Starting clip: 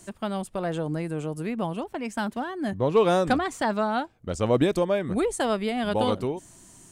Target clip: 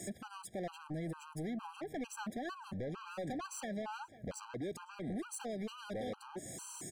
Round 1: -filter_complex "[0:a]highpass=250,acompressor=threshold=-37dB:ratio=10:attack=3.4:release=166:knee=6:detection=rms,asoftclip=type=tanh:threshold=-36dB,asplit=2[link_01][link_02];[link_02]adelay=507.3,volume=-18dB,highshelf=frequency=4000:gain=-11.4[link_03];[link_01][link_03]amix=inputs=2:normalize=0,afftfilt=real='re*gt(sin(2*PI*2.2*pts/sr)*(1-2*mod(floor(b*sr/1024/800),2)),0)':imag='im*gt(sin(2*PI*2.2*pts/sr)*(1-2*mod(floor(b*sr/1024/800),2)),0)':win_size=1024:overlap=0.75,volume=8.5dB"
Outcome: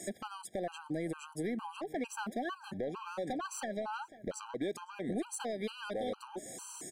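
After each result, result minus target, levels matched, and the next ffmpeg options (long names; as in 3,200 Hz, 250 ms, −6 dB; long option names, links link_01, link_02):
125 Hz band −5.5 dB; soft clipping: distortion −8 dB
-filter_complex "[0:a]highpass=110,acompressor=threshold=-37dB:ratio=10:attack=3.4:release=166:knee=6:detection=rms,asoftclip=type=tanh:threshold=-36dB,asplit=2[link_01][link_02];[link_02]adelay=507.3,volume=-18dB,highshelf=frequency=4000:gain=-11.4[link_03];[link_01][link_03]amix=inputs=2:normalize=0,afftfilt=real='re*gt(sin(2*PI*2.2*pts/sr)*(1-2*mod(floor(b*sr/1024/800),2)),0)':imag='im*gt(sin(2*PI*2.2*pts/sr)*(1-2*mod(floor(b*sr/1024/800),2)),0)':win_size=1024:overlap=0.75,volume=8.5dB"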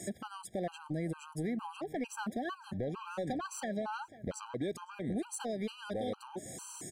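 soft clipping: distortion −9 dB
-filter_complex "[0:a]highpass=110,acompressor=threshold=-37dB:ratio=10:attack=3.4:release=166:knee=6:detection=rms,asoftclip=type=tanh:threshold=-44.5dB,asplit=2[link_01][link_02];[link_02]adelay=507.3,volume=-18dB,highshelf=frequency=4000:gain=-11.4[link_03];[link_01][link_03]amix=inputs=2:normalize=0,afftfilt=real='re*gt(sin(2*PI*2.2*pts/sr)*(1-2*mod(floor(b*sr/1024/800),2)),0)':imag='im*gt(sin(2*PI*2.2*pts/sr)*(1-2*mod(floor(b*sr/1024/800),2)),0)':win_size=1024:overlap=0.75,volume=8.5dB"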